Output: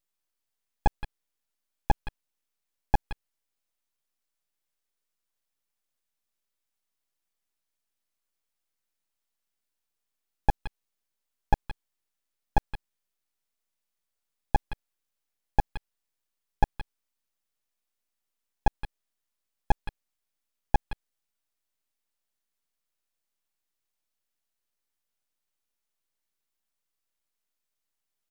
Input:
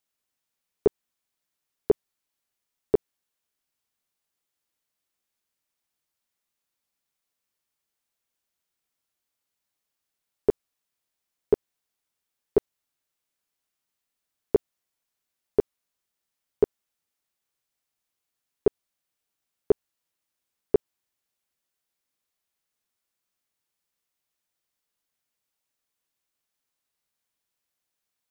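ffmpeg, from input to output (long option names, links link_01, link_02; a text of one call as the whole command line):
ffmpeg -i in.wav -filter_complex "[0:a]asplit=2[link_01][link_02];[link_02]adelay=170,highpass=300,lowpass=3400,asoftclip=type=hard:threshold=-19.5dB,volume=-7dB[link_03];[link_01][link_03]amix=inputs=2:normalize=0,aeval=exprs='abs(val(0))':channel_layout=same" out.wav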